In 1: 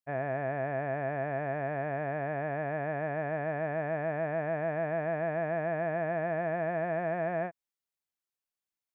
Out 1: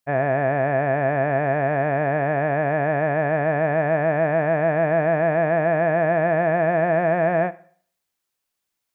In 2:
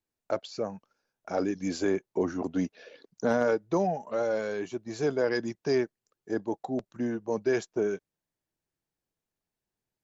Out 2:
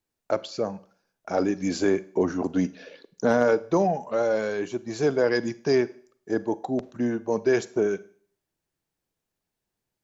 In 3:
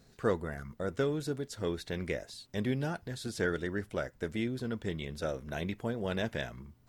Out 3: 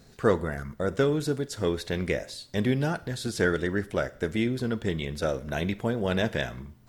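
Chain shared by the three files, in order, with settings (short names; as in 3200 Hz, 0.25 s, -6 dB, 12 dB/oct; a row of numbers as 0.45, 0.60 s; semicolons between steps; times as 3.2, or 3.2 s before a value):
Schroeder reverb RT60 0.51 s, combs from 33 ms, DRR 17 dB; normalise peaks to -9 dBFS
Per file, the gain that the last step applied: +12.0, +4.5, +7.0 dB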